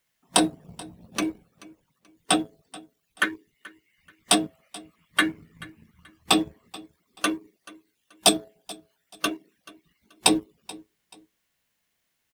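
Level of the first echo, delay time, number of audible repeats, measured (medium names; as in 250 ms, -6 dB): -21.0 dB, 432 ms, 2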